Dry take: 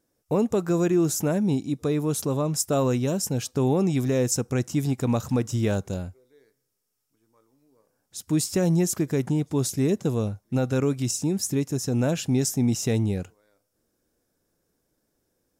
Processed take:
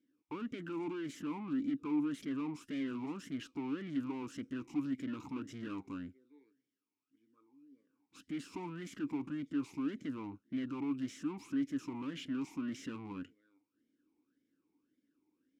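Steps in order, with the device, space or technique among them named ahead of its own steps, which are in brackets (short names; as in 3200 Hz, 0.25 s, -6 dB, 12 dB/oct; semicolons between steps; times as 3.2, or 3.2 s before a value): talk box (tube stage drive 38 dB, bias 0.75; vowel sweep i-u 1.8 Hz); gain +11 dB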